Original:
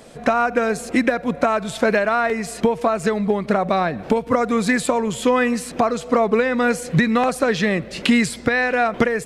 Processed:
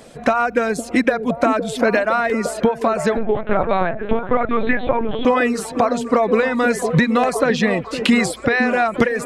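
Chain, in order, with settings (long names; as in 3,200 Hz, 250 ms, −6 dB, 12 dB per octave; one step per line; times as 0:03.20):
reverb reduction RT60 0.53 s
echo through a band-pass that steps 511 ms, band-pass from 320 Hz, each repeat 0.7 octaves, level −4.5 dB
0:03.17–0:05.25: linear-prediction vocoder at 8 kHz pitch kept
level +1.5 dB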